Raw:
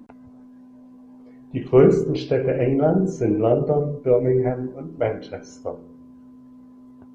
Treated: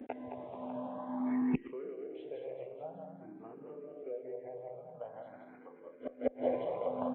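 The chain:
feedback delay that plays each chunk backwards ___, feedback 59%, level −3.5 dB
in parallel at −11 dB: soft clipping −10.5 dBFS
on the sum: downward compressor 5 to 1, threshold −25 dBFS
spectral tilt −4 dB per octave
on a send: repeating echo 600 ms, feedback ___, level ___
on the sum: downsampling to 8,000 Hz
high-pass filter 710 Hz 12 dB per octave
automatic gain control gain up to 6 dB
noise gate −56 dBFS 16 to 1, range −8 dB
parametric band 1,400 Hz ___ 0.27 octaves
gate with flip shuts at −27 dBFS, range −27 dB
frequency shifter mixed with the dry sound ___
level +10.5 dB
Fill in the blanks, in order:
109 ms, 55%, −15 dB, −5.5 dB, +0.48 Hz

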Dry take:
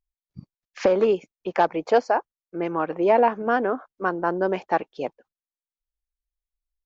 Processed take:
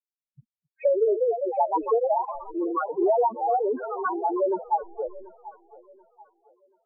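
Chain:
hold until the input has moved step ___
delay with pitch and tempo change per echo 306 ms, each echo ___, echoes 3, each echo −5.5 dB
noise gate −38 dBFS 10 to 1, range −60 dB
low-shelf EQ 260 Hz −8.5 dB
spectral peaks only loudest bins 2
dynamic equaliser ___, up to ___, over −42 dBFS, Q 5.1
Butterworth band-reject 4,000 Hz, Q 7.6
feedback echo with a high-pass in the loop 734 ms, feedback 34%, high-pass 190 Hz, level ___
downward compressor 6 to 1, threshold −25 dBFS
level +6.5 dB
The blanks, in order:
−37.5 dBFS, +2 semitones, 1,000 Hz, +3 dB, −20 dB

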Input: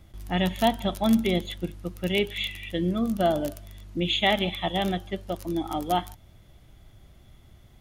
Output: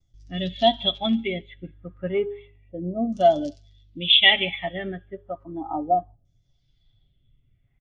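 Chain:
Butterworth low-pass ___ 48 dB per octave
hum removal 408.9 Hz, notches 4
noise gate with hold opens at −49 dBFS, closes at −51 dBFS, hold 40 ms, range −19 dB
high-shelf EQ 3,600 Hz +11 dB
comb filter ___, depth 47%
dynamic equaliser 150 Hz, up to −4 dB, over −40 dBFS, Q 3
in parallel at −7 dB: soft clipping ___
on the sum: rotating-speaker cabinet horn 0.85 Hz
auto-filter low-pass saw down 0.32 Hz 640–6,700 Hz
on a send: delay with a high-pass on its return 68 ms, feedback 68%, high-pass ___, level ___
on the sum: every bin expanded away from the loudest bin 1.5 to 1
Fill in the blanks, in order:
9,500 Hz, 7.3 ms, −24.5 dBFS, 3,400 Hz, −15 dB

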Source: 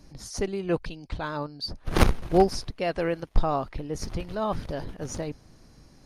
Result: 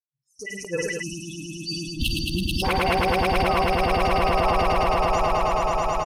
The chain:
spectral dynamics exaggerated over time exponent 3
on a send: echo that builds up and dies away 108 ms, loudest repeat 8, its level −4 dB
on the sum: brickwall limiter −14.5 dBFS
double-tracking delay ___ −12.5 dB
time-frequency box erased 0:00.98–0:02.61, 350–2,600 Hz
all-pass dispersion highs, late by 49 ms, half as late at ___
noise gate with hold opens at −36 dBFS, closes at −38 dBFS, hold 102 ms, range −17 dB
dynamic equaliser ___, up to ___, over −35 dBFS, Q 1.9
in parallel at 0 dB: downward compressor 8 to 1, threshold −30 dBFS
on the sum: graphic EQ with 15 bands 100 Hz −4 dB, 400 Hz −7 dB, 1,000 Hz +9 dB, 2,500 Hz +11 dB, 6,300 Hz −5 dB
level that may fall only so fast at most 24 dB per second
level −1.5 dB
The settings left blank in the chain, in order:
49 ms, 820 Hz, 480 Hz, +3 dB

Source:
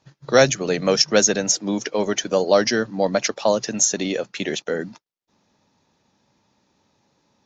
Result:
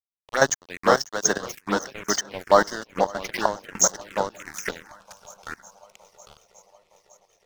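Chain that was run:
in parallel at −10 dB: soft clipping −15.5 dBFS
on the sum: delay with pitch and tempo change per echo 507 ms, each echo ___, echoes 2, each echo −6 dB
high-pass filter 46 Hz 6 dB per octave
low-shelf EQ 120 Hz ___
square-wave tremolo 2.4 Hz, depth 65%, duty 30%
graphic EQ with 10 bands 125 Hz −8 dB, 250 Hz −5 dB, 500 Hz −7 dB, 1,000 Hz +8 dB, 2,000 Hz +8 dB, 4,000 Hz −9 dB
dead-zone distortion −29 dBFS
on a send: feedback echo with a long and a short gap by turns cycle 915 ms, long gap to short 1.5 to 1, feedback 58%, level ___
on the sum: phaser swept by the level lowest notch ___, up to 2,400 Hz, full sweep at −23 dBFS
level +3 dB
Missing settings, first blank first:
−1 semitone, −3 dB, −24 dB, 250 Hz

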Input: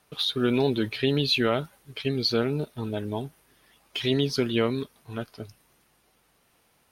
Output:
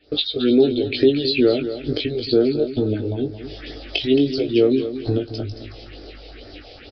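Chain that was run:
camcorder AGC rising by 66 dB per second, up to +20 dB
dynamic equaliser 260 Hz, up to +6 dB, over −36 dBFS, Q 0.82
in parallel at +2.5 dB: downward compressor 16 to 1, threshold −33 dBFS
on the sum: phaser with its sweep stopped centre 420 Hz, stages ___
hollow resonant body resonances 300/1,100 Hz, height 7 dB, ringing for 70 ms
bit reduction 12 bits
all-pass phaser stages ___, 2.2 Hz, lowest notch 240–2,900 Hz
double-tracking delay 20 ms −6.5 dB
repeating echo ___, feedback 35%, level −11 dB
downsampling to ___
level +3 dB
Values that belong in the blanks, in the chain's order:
4, 4, 221 ms, 11,025 Hz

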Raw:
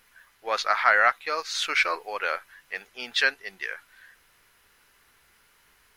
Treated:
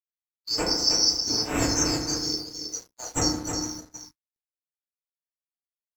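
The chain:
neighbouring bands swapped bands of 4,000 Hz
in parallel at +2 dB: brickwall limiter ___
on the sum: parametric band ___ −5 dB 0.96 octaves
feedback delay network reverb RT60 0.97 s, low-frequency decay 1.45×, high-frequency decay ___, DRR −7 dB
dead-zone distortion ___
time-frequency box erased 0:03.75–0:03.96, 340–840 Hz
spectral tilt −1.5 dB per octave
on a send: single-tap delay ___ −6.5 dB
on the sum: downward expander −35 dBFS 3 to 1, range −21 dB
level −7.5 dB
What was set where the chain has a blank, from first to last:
−16 dBFS, 170 Hz, 0.3×, −32 dBFS, 316 ms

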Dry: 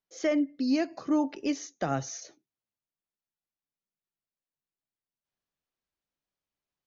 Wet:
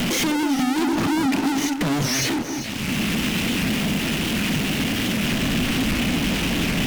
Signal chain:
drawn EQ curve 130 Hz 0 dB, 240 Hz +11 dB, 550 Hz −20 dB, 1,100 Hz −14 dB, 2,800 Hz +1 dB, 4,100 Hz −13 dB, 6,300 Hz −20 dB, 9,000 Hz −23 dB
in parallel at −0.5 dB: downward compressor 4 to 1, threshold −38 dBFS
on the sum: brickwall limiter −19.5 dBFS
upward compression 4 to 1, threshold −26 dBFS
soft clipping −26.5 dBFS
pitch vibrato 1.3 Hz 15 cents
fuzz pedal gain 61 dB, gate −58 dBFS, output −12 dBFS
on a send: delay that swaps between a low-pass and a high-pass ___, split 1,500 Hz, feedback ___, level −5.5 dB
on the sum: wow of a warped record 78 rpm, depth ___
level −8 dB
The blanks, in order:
196 ms, 57%, 160 cents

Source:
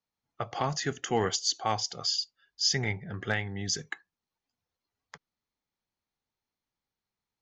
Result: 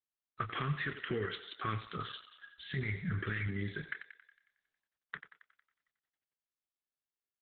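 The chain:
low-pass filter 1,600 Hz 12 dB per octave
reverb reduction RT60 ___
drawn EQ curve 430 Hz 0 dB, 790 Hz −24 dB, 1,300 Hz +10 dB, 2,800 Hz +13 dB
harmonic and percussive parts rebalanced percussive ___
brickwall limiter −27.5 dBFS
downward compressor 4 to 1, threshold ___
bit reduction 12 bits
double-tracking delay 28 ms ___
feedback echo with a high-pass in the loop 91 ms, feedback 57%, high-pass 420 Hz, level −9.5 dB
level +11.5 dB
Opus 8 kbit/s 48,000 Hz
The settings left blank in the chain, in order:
0.62 s, −8 dB, −45 dBFS, −10 dB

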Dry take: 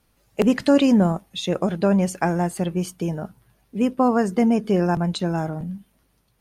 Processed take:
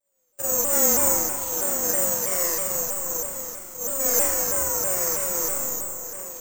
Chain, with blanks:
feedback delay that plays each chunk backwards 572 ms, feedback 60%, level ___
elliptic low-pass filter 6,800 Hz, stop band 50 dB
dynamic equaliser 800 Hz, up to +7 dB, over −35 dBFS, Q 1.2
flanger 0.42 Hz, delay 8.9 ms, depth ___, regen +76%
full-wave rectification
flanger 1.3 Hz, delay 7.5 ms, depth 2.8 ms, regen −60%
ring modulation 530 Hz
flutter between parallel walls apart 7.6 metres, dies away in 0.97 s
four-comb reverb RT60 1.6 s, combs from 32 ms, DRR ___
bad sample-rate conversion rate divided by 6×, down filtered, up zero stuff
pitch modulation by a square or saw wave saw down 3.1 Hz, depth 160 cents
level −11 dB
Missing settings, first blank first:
−9.5 dB, 5.6 ms, −7.5 dB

